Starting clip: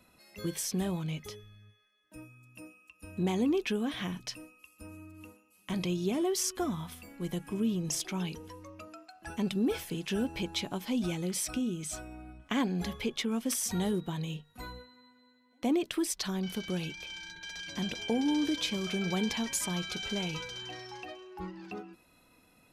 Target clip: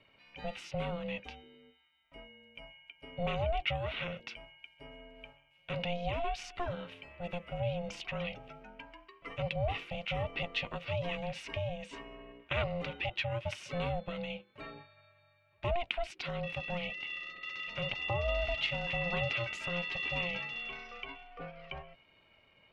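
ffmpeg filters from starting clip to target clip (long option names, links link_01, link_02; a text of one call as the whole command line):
ffmpeg -i in.wav -af "aeval=exprs='val(0)*sin(2*PI*350*n/s)':channel_layout=same,lowpass=frequency=2600:width_type=q:width=3.4,bandreject=frequency=1700:width=14,volume=-1.5dB" out.wav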